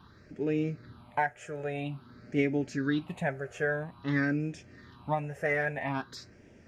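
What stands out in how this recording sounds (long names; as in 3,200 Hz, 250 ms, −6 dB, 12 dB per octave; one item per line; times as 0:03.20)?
phaser sweep stages 6, 0.5 Hz, lowest notch 260–1,100 Hz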